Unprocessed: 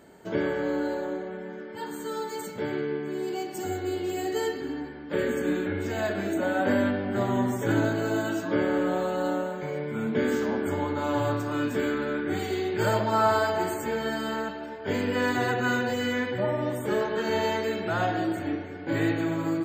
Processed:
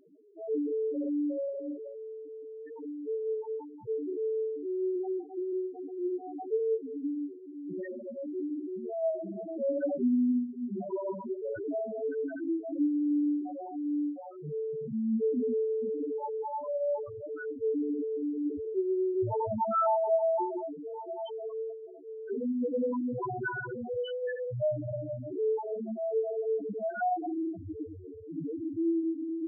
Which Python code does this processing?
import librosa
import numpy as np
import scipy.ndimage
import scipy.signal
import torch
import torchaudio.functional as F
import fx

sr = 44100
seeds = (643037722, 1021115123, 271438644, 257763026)

y = fx.stretch_vocoder_free(x, sr, factor=1.5)
y = fx.rev_freeverb(y, sr, rt60_s=1.1, hf_ratio=0.55, predelay_ms=75, drr_db=18.0)
y = fx.spec_topn(y, sr, count=2)
y = y * librosa.db_to_amplitude(2.0)